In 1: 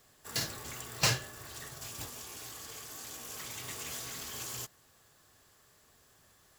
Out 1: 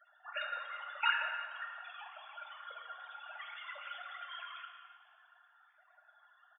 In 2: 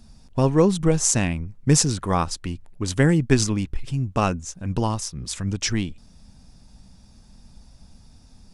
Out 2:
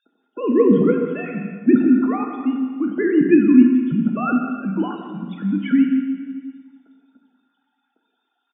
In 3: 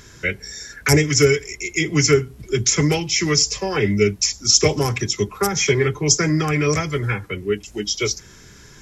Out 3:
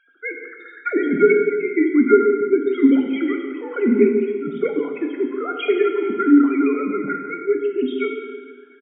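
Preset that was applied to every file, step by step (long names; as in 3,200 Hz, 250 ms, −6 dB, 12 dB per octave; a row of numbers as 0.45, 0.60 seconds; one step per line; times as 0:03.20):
three sine waves on the formant tracks
hollow resonant body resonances 260/1,400 Hz, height 17 dB, ringing for 45 ms
spectral peaks only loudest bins 32
on a send: single-tap delay 175 ms −13 dB
on the sum: dense smooth reverb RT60 1.7 s, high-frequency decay 0.95×, DRR 3 dB
level −7 dB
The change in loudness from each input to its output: −3.5, +4.5, 0.0 LU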